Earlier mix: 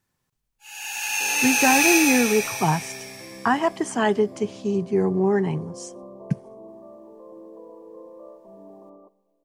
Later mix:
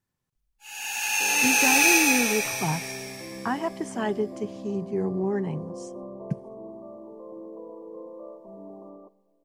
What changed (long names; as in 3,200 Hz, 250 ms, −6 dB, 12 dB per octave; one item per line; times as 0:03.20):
speech −9.0 dB
master: add low-shelf EQ 430 Hz +4.5 dB